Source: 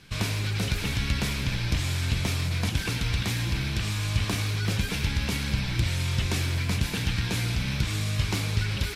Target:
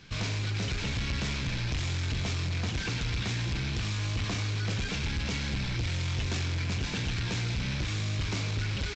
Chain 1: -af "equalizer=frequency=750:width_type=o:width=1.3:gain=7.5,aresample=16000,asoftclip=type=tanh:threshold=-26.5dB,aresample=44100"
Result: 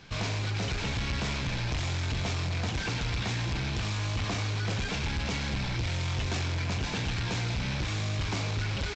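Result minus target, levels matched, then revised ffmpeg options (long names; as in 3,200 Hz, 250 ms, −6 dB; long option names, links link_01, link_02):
1,000 Hz band +4.5 dB
-af "aresample=16000,asoftclip=type=tanh:threshold=-26.5dB,aresample=44100"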